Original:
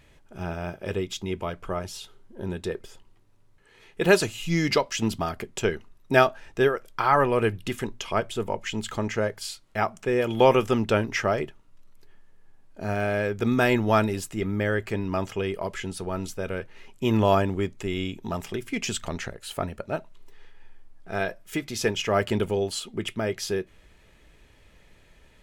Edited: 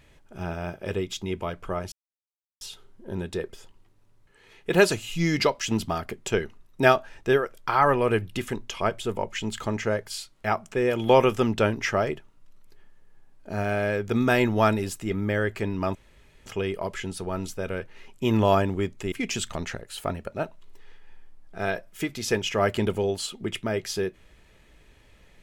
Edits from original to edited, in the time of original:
0:01.92: splice in silence 0.69 s
0:15.26: splice in room tone 0.51 s
0:17.92–0:18.65: remove

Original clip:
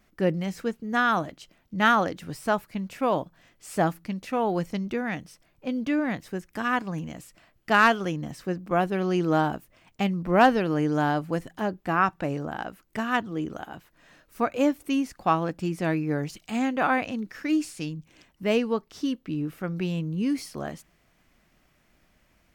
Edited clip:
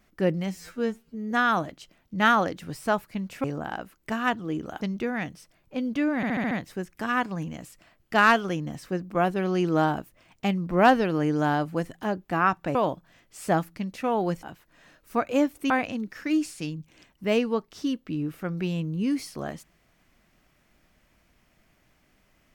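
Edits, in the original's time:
0:00.51–0:00.91: time-stretch 2×
0:03.04–0:04.72: swap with 0:12.31–0:13.68
0:06.07: stutter 0.07 s, 6 plays
0:14.95–0:16.89: remove

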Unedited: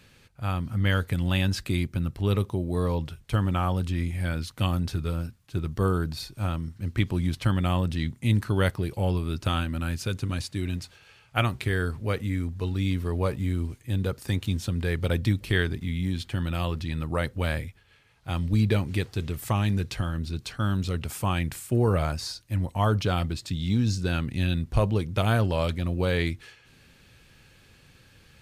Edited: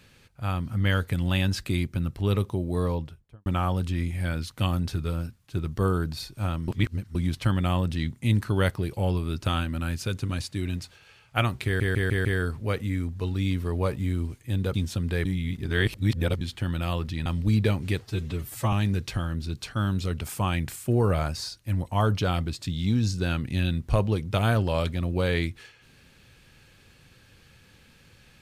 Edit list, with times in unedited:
0:02.80–0:03.46: fade out and dull
0:06.68–0:07.15: reverse
0:11.65: stutter 0.15 s, 5 plays
0:14.14–0:14.46: remove
0:14.97–0:16.13: reverse
0:16.98–0:18.32: remove
0:19.11–0:19.56: time-stretch 1.5×

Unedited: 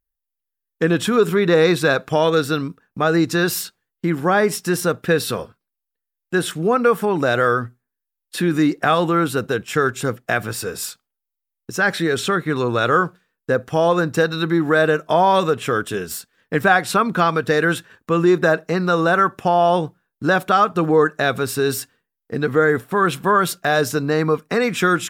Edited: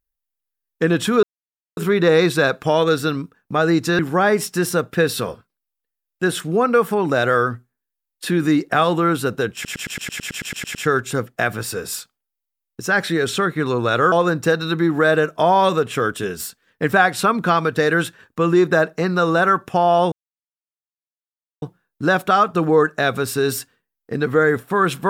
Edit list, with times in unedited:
0:01.23: splice in silence 0.54 s
0:03.45–0:04.10: remove
0:09.65: stutter 0.11 s, 12 plays
0:13.02–0:13.83: remove
0:19.83: splice in silence 1.50 s

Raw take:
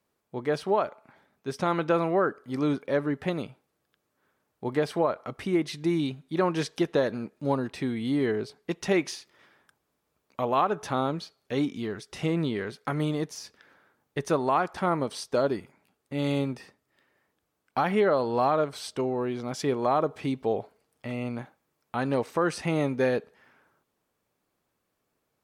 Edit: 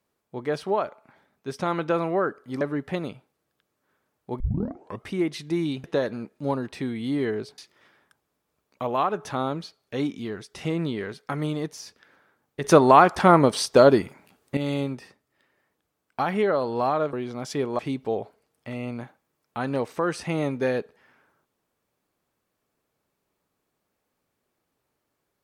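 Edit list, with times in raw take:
0:02.61–0:02.95: remove
0:04.74: tape start 0.65 s
0:06.18–0:06.85: remove
0:08.59–0:09.16: remove
0:14.22–0:16.15: clip gain +10.5 dB
0:18.71–0:19.22: remove
0:19.88–0:20.17: remove

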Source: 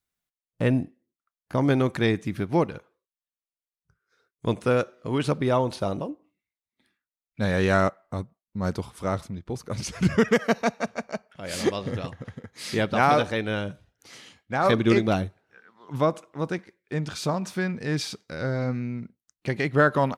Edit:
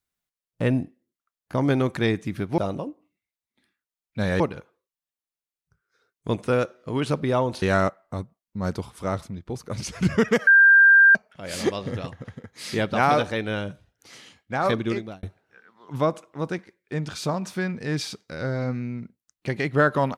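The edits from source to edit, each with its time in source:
0:05.80–0:07.62: move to 0:02.58
0:10.47–0:11.15: beep over 1,590 Hz −10 dBFS
0:14.55–0:15.23: fade out

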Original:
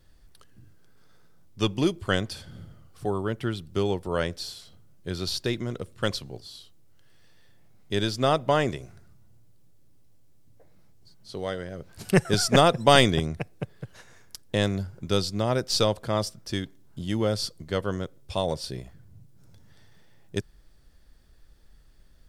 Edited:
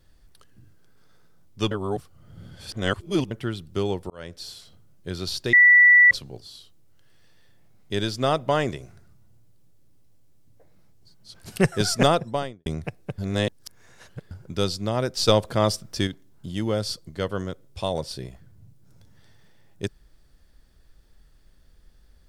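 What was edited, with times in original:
0:01.71–0:03.31: reverse
0:04.10–0:04.55: fade in
0:05.53–0:06.11: beep over 1,960 Hz −10 dBFS
0:11.34–0:11.87: remove
0:12.50–0:13.19: fade out and dull
0:13.71–0:14.84: reverse
0:15.81–0:16.60: clip gain +5 dB

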